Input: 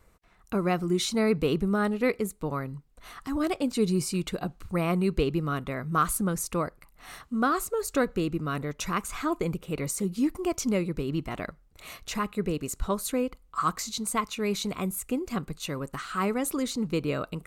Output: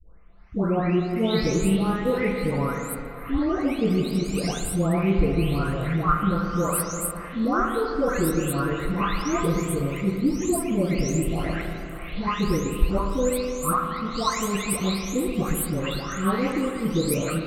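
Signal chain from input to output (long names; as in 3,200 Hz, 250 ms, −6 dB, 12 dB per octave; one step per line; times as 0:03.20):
every frequency bin delayed by itself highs late, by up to 636 ms
low-shelf EQ 71 Hz +11 dB
spring reverb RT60 2.6 s, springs 31/36/40 ms, chirp 80 ms, DRR 2.5 dB
in parallel at +1.5 dB: speech leveller within 5 dB 0.5 s
on the sum: level −3.5 dB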